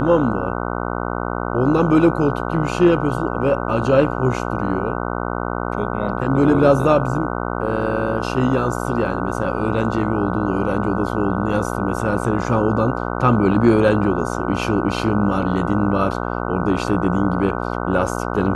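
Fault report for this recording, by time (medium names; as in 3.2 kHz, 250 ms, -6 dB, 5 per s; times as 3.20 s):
buzz 60 Hz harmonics 25 -24 dBFS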